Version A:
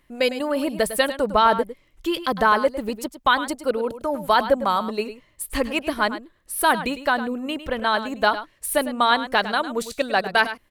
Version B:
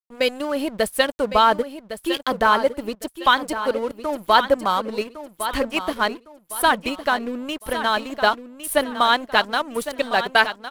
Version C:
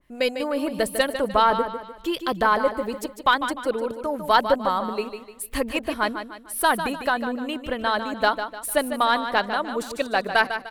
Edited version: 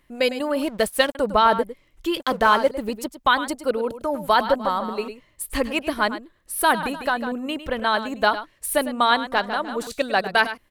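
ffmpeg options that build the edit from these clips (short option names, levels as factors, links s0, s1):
-filter_complex "[1:a]asplit=2[s0][s1];[2:a]asplit=3[s2][s3][s4];[0:a]asplit=6[s5][s6][s7][s8][s9][s10];[s5]atrim=end=0.632[s11];[s0]atrim=start=0.628:end=1.152[s12];[s6]atrim=start=1.148:end=2.202[s13];[s1]atrim=start=2.198:end=2.712[s14];[s7]atrim=start=2.708:end=4.492[s15];[s2]atrim=start=4.488:end=5.082[s16];[s8]atrim=start=5.078:end=6.832[s17];[s3]atrim=start=6.828:end=7.322[s18];[s9]atrim=start=7.318:end=9.322[s19];[s4]atrim=start=9.318:end=9.872[s20];[s10]atrim=start=9.868[s21];[s11][s12]acrossfade=d=0.004:c1=hsin:c2=hsin[s22];[s22][s13]acrossfade=d=0.004:c1=hsin:c2=hsin[s23];[s23][s14]acrossfade=d=0.004:c1=hsin:c2=hsin[s24];[s24][s15]acrossfade=d=0.004:c1=hsin:c2=hsin[s25];[s25][s16]acrossfade=d=0.004:c1=hsin:c2=hsin[s26];[s26][s17]acrossfade=d=0.004:c1=hsin:c2=hsin[s27];[s27][s18]acrossfade=d=0.004:c1=hsin:c2=hsin[s28];[s28][s19]acrossfade=d=0.004:c1=hsin:c2=hsin[s29];[s29][s20]acrossfade=d=0.004:c1=hsin:c2=hsin[s30];[s30][s21]acrossfade=d=0.004:c1=hsin:c2=hsin"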